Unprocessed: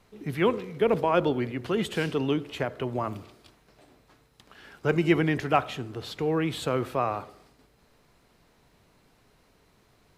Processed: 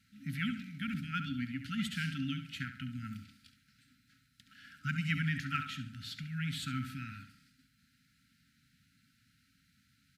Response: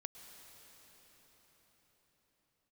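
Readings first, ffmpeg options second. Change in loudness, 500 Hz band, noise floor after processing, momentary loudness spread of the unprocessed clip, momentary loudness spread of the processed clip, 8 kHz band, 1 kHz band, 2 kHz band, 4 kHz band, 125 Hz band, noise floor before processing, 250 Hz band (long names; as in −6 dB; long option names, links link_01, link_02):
−10.5 dB, below −40 dB, −72 dBFS, 12 LU, 13 LU, −5.5 dB, −15.0 dB, −5.0 dB, −4.5 dB, −5.5 dB, −64 dBFS, −9.5 dB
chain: -filter_complex "[0:a]highpass=82,afftfilt=real='re*(1-between(b*sr/4096,290,1300))':imag='im*(1-between(b*sr/4096,290,1300))':win_size=4096:overlap=0.75,equalizer=frequency=4500:width_type=o:width=0.27:gain=2.5,asplit=2[link_01][link_02];[link_02]adelay=69,lowpass=frequency=4300:poles=1,volume=-9dB,asplit=2[link_03][link_04];[link_04]adelay=69,lowpass=frequency=4300:poles=1,volume=0.39,asplit=2[link_05][link_06];[link_06]adelay=69,lowpass=frequency=4300:poles=1,volume=0.39,asplit=2[link_07][link_08];[link_08]adelay=69,lowpass=frequency=4300:poles=1,volume=0.39[link_09];[link_01][link_03][link_05][link_07][link_09]amix=inputs=5:normalize=0,volume=-5.5dB"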